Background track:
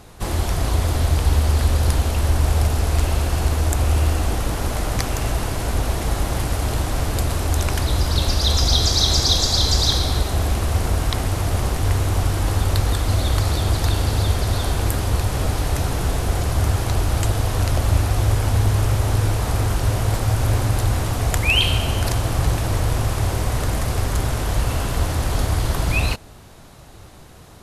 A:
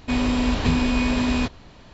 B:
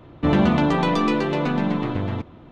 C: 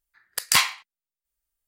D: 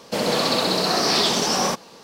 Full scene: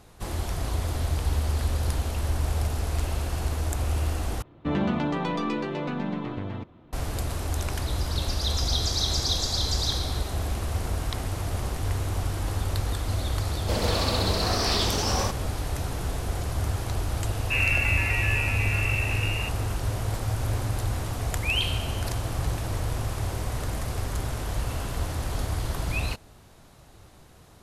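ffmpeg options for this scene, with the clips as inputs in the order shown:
ffmpeg -i bed.wav -i cue0.wav -i cue1.wav -i cue2.wav -i cue3.wav -filter_complex "[2:a]asplit=2[link_01][link_02];[0:a]volume=-8.5dB[link_03];[link_02]lowpass=frequency=2500:width_type=q:width=0.5098,lowpass=frequency=2500:width_type=q:width=0.6013,lowpass=frequency=2500:width_type=q:width=0.9,lowpass=frequency=2500:width_type=q:width=2.563,afreqshift=-2900[link_04];[link_03]asplit=2[link_05][link_06];[link_05]atrim=end=4.424[link_07];[link_01]atrim=end=2.51,asetpts=PTS-STARTPTS,volume=-8dB[link_08];[link_06]atrim=start=6.926[link_09];[4:a]atrim=end=2.03,asetpts=PTS-STARTPTS,volume=-6.5dB,afade=type=in:duration=0.004:curve=hsin,afade=type=out:start_time=2.026:duration=0.004:curve=hsin,adelay=13560[link_10];[link_04]atrim=end=2.51,asetpts=PTS-STARTPTS,volume=-8dB,afade=type=in:duration=0.004:curve=hsin,afade=type=out:start_time=2.506:duration=0.004:curve=hsin,adelay=17270[link_11];[link_07][link_08]acrossfade=duration=0.004:curve1=hsin:curve2=hsin[link_12];[link_12][link_09]acrossfade=duration=0.004:curve1=hsin:curve2=hsin[link_13];[link_13][link_10][link_11]amix=inputs=3:normalize=0" out.wav

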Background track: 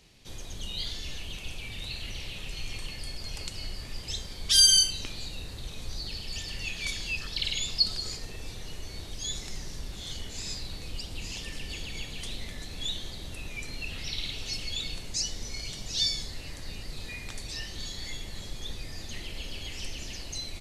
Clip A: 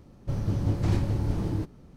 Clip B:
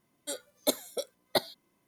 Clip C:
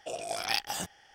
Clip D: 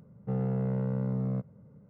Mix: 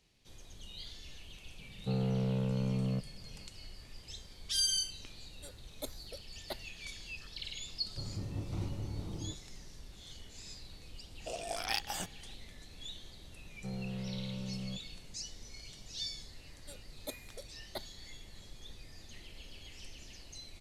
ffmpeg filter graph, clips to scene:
ffmpeg -i bed.wav -i cue0.wav -i cue1.wav -i cue2.wav -i cue3.wav -filter_complex "[4:a]asplit=2[link_01][link_02];[2:a]asplit=2[link_03][link_04];[0:a]volume=-12.5dB[link_05];[1:a]asuperstop=centerf=1700:order=4:qfactor=3.8[link_06];[3:a]acontrast=72[link_07];[link_02]aecho=1:1:5.4:0.7[link_08];[link_01]atrim=end=1.89,asetpts=PTS-STARTPTS,volume=-2.5dB,afade=type=in:duration=0.004:curve=hsin,afade=type=out:start_time=1.886:duration=0.004:curve=hsin,adelay=1590[link_09];[link_03]atrim=end=1.87,asetpts=PTS-STARTPTS,volume=-15dB,afade=type=in:duration=0.004:curve=hsin,afade=type=out:start_time=1.866:duration=0.004:curve=hsin,adelay=5150[link_10];[link_06]atrim=end=1.96,asetpts=PTS-STARTPTS,volume=-13dB,afade=type=in:duration=0.004:curve=hsin,afade=type=out:start_time=1.956:duration=0.004:curve=hsin,adelay=7690[link_11];[link_07]atrim=end=1.14,asetpts=PTS-STARTPTS,volume=-11dB,afade=type=in:duration=0.004:curve=hsin,afade=type=out:start_time=1.136:duration=0.004:curve=hsin,adelay=11200[link_12];[link_08]atrim=end=1.89,asetpts=PTS-STARTPTS,volume=-12.5dB,afade=type=in:duration=0.004:curve=hsin,afade=type=out:start_time=1.886:duration=0.004:curve=hsin,adelay=13360[link_13];[link_04]atrim=end=1.87,asetpts=PTS-STARTPTS,volume=-15.5dB,afade=type=in:duration=0.004:curve=hsin,afade=type=out:start_time=1.866:duration=0.004:curve=hsin,adelay=16400[link_14];[link_05][link_09][link_10][link_11][link_12][link_13][link_14]amix=inputs=7:normalize=0" out.wav

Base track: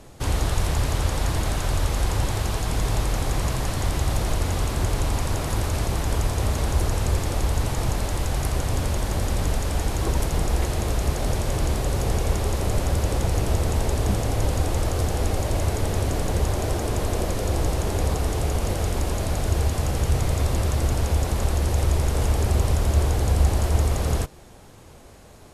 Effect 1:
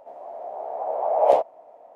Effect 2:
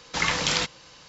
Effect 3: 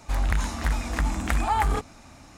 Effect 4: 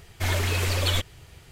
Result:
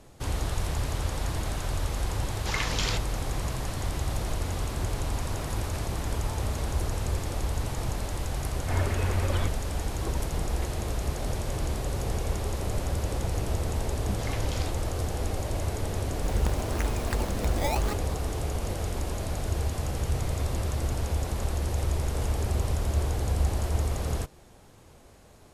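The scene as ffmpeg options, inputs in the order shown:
ffmpeg -i bed.wav -i cue0.wav -i cue1.wav -i cue2.wav -i cue3.wav -filter_complex "[2:a]asplit=2[link_01][link_02];[3:a]asplit=2[link_03][link_04];[0:a]volume=-6.5dB[link_05];[link_03]acompressor=threshold=-27dB:ratio=6:attack=3.2:release=140:knee=1:detection=peak[link_06];[4:a]lowpass=1600[link_07];[link_04]acrusher=samples=18:mix=1:aa=0.000001:lfo=1:lforange=28.8:lforate=0.87[link_08];[link_01]atrim=end=1.08,asetpts=PTS-STARTPTS,volume=-6.5dB,afade=type=in:duration=0.004:curve=hsin,afade=type=out:start_time=1.076:duration=0.004:curve=hsin,adelay=2320[link_09];[link_06]atrim=end=2.37,asetpts=PTS-STARTPTS,volume=-14.5dB,afade=type=in:duration=0.004:curve=hsin,afade=type=out:start_time=2.366:duration=0.004:curve=hsin,adelay=210357S[link_10];[link_07]atrim=end=1.51,asetpts=PTS-STARTPTS,volume=-2.5dB,afade=type=in:duration=0.004:curve=hsin,afade=type=out:start_time=1.506:duration=0.004:curve=hsin,adelay=8470[link_11];[link_02]atrim=end=1.08,asetpts=PTS-STARTPTS,volume=-16.5dB,afade=type=in:duration=0.004:curve=hsin,afade=type=out:start_time=1.076:duration=0.004:curve=hsin,adelay=14050[link_12];[link_08]atrim=end=2.37,asetpts=PTS-STARTPTS,volume=-5.5dB,afade=type=in:duration=0.004:curve=hsin,afade=type=out:start_time=2.366:duration=0.004:curve=hsin,adelay=16140[link_13];[link_05][link_09][link_10][link_11][link_12][link_13]amix=inputs=6:normalize=0" out.wav

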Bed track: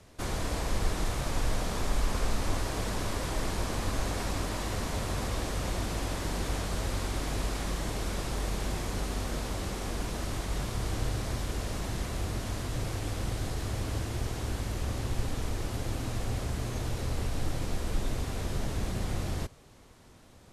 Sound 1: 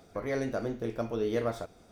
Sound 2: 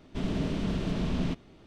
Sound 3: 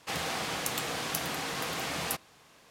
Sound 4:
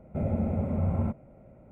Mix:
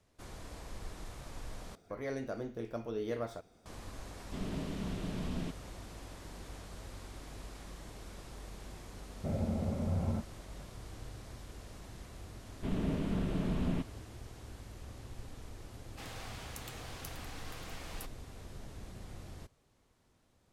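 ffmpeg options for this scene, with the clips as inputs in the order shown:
ffmpeg -i bed.wav -i cue0.wav -i cue1.wav -i cue2.wav -i cue3.wav -filter_complex "[2:a]asplit=2[link_01][link_02];[0:a]volume=-15.5dB[link_03];[1:a]acontrast=56[link_04];[link_02]equalizer=frequency=6300:width_type=o:width=1.4:gain=-14[link_05];[link_03]asplit=2[link_06][link_07];[link_06]atrim=end=1.754[link_08];[link_04]atrim=end=1.91,asetpts=PTS-STARTPTS,volume=-13dB[link_09];[link_07]atrim=start=3.656[link_10];[link_01]atrim=end=1.66,asetpts=PTS-STARTPTS,volume=-8.5dB,afade=type=in:duration=0.004:curve=hsin,afade=type=out:start_time=1.656:duration=0.004:curve=hsin,adelay=183897S[link_11];[4:a]atrim=end=1.71,asetpts=PTS-STARTPTS,volume=-6dB,afade=type=in:duration=0.004:curve=hsin,afade=type=out:start_time=1.706:duration=0.004:curve=hsin,adelay=9090[link_12];[link_05]atrim=end=1.66,asetpts=PTS-STARTPTS,volume=-3.5dB,afade=type=in:duration=0.004:curve=hsin,afade=type=out:start_time=1.656:duration=0.004:curve=hsin,adelay=12480[link_13];[3:a]atrim=end=2.7,asetpts=PTS-STARTPTS,volume=-14.5dB,afade=type=in:duration=0.004:curve=hsin,afade=type=out:start_time=2.696:duration=0.004:curve=hsin,adelay=15900[link_14];[link_08][link_09]acrossfade=duration=0.004:curve1=hsin:curve2=hsin[link_15];[link_15][link_10]acrossfade=duration=0.004:curve1=hsin:curve2=hsin[link_16];[link_16][link_11][link_12][link_13][link_14]amix=inputs=5:normalize=0" out.wav

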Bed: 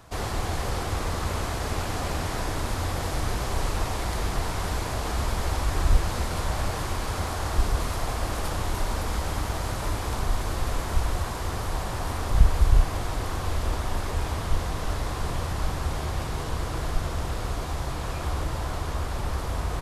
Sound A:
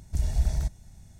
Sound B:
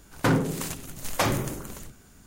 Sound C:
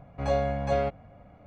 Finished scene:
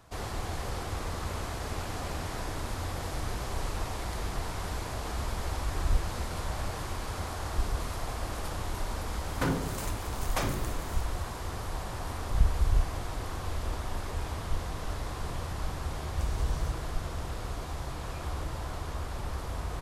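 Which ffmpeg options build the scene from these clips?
ffmpeg -i bed.wav -i cue0.wav -i cue1.wav -filter_complex "[1:a]asplit=2[link_01][link_02];[0:a]volume=-6.5dB[link_03];[link_01]aresample=32000,aresample=44100[link_04];[2:a]atrim=end=2.26,asetpts=PTS-STARTPTS,volume=-7.5dB,afade=type=in:duration=0.004:curve=hsin,afade=type=out:start_time=2.256:duration=0.004:curve=hsin,adelay=9170[link_05];[link_04]atrim=end=1.19,asetpts=PTS-STARTPTS,volume=-13dB,afade=type=in:duration=0.004:curve=hsin,afade=type=out:start_time=1.186:duration=0.004:curve=hsin,adelay=12310[link_06];[link_02]atrim=end=1.19,asetpts=PTS-STARTPTS,volume=-6dB,afade=type=in:duration=0.004:curve=hsin,afade=type=out:start_time=1.186:duration=0.004:curve=hsin,adelay=707364S[link_07];[link_03][link_05][link_06][link_07]amix=inputs=4:normalize=0" out.wav

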